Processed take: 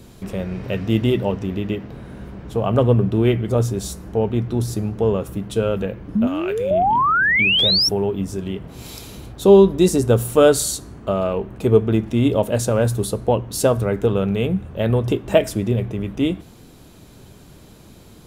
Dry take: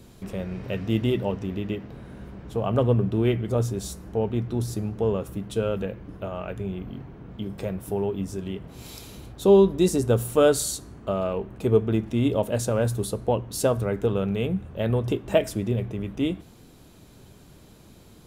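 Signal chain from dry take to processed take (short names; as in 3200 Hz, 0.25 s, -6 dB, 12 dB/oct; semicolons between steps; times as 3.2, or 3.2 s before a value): 6.15–7.89 painted sound rise 200–5700 Hz -22 dBFS; 6.27–6.71 tilt shelf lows -8.5 dB, about 1100 Hz; gain +5.5 dB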